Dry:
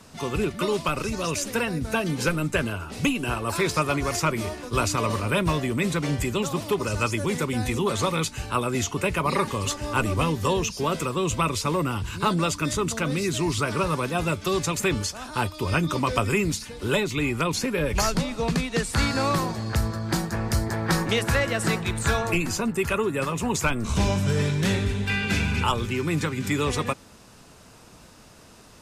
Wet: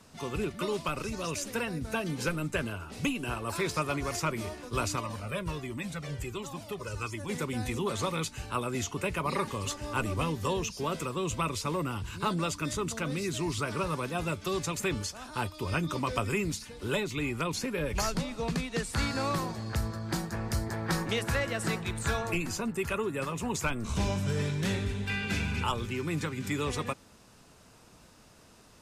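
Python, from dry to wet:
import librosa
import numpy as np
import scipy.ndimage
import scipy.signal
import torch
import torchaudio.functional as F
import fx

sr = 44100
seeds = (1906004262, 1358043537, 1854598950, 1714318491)

y = fx.comb_cascade(x, sr, direction='falling', hz=1.4, at=(4.99, 7.28), fade=0.02)
y = y * 10.0 ** (-7.0 / 20.0)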